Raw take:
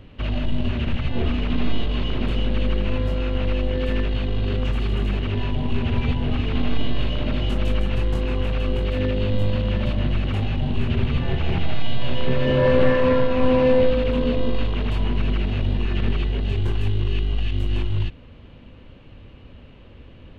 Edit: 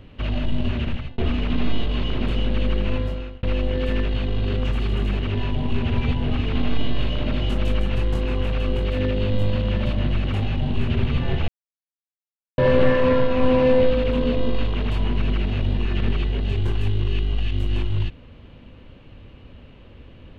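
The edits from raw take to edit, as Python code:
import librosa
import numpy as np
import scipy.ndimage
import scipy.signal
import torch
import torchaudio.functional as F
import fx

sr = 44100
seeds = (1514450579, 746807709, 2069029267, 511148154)

y = fx.edit(x, sr, fx.fade_out_span(start_s=0.71, length_s=0.47, curve='qsin'),
    fx.fade_out_span(start_s=2.95, length_s=0.48),
    fx.silence(start_s=11.48, length_s=1.1), tone=tone)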